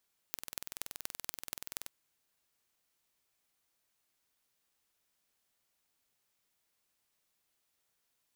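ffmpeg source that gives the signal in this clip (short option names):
-f lavfi -i "aevalsrc='0.376*eq(mod(n,2100),0)*(0.5+0.5*eq(mod(n,10500),0))':d=1.53:s=44100"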